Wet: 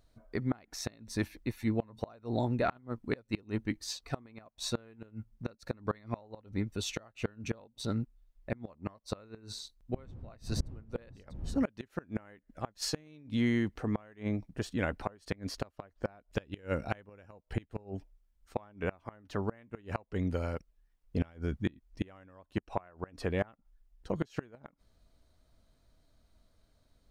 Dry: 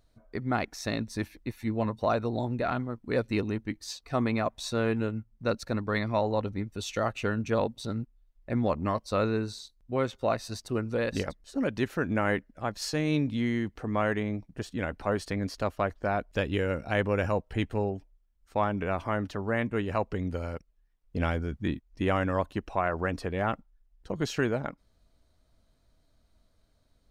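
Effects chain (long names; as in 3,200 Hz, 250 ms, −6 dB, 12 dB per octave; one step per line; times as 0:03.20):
0:09.93–0:11.63: wind on the microphone 110 Hz −28 dBFS
gate with flip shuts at −18 dBFS, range −28 dB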